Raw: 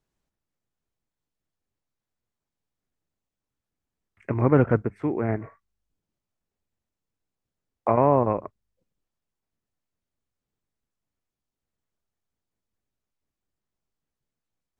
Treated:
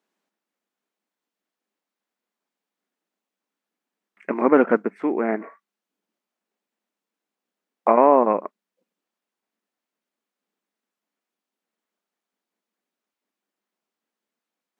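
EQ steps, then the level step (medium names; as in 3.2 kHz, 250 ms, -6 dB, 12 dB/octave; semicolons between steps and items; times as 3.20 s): brick-wall FIR high-pass 180 Hz; tone controls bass +1 dB, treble -6 dB; bass shelf 430 Hz -6 dB; +7.0 dB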